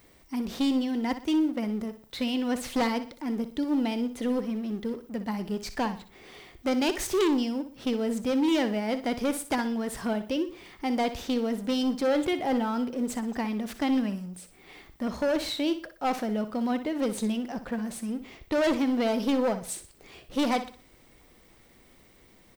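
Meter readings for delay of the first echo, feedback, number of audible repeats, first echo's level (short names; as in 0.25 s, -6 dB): 61 ms, 36%, 3, -12.0 dB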